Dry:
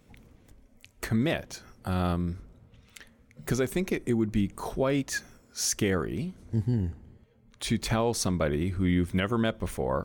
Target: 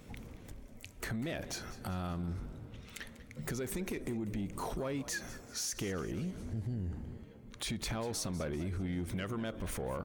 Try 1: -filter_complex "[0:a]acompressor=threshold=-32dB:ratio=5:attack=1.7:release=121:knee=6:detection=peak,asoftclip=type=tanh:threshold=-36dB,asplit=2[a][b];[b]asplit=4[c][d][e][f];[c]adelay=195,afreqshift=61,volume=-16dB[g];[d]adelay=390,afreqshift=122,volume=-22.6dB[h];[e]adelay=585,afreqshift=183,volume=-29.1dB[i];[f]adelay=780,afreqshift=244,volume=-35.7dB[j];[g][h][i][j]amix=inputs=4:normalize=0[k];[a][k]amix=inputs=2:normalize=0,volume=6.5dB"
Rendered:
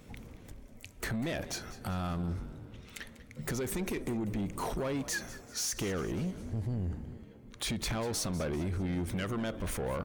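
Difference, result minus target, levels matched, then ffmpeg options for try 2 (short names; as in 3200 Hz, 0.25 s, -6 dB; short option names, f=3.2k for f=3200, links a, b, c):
compressor: peak gain reduction -6 dB
-filter_complex "[0:a]acompressor=threshold=-39.5dB:ratio=5:attack=1.7:release=121:knee=6:detection=peak,asoftclip=type=tanh:threshold=-36dB,asplit=2[a][b];[b]asplit=4[c][d][e][f];[c]adelay=195,afreqshift=61,volume=-16dB[g];[d]adelay=390,afreqshift=122,volume=-22.6dB[h];[e]adelay=585,afreqshift=183,volume=-29.1dB[i];[f]adelay=780,afreqshift=244,volume=-35.7dB[j];[g][h][i][j]amix=inputs=4:normalize=0[k];[a][k]amix=inputs=2:normalize=0,volume=6.5dB"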